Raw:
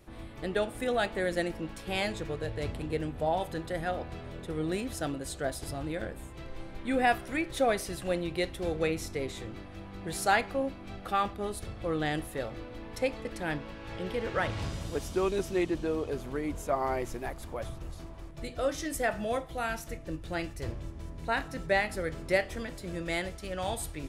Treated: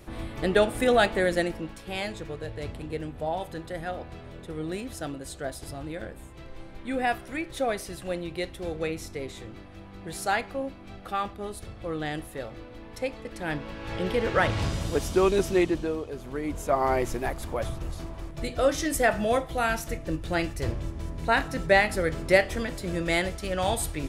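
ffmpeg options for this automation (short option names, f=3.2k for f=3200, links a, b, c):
-af "volume=27dB,afade=t=out:st=0.94:d=0.86:silence=0.334965,afade=t=in:st=13.3:d=0.67:silence=0.398107,afade=t=out:st=15.52:d=0.57:silence=0.298538,afade=t=in:st=16.09:d=0.9:silence=0.298538"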